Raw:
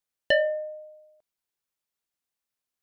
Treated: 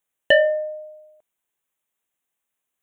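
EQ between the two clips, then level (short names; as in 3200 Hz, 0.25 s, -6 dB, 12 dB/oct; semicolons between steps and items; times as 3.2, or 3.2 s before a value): Butterworth band-stop 4800 Hz, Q 1.7; low shelf 140 Hz -6 dB; notch 1400 Hz, Q 21; +7.0 dB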